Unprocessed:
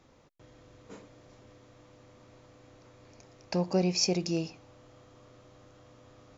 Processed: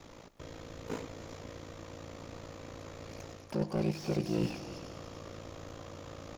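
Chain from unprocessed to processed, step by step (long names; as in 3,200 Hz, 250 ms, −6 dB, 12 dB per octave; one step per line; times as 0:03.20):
high-shelf EQ 3,200 Hz +2.5 dB
reversed playback
downward compressor 10 to 1, threshold −37 dBFS, peak gain reduction 16 dB
reversed playback
pitch-shifted copies added −7 semitones −15 dB, +12 semitones −17 dB
ring modulation 28 Hz
on a send: echo machine with several playback heads 98 ms, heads first and third, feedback 57%, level −18.5 dB
on the sum: slew-rate limiting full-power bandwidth 5.3 Hz
level +12 dB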